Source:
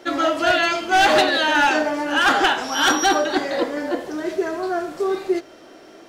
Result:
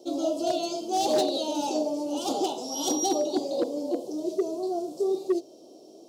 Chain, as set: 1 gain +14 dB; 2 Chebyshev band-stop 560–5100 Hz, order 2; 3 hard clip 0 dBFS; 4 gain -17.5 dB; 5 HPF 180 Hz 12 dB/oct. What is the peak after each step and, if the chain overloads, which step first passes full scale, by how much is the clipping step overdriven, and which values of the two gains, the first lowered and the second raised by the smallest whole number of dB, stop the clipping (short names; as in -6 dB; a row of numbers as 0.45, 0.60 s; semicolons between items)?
+3.0, +5.0, 0.0, -17.5, -14.5 dBFS; step 1, 5.0 dB; step 1 +9 dB, step 4 -12.5 dB